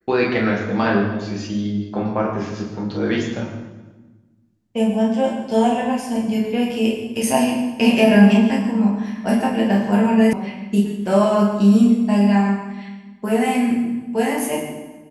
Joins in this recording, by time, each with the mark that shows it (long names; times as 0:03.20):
0:10.33: cut off before it has died away